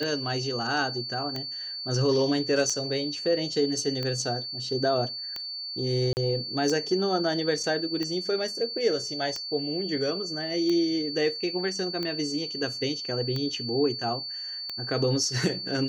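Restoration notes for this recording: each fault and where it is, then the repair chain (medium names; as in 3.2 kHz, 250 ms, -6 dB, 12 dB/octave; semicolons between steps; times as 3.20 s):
tick 45 rpm -18 dBFS
whine 4.5 kHz -33 dBFS
6.13–6.17 s: dropout 39 ms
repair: de-click; band-stop 4.5 kHz, Q 30; interpolate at 6.13 s, 39 ms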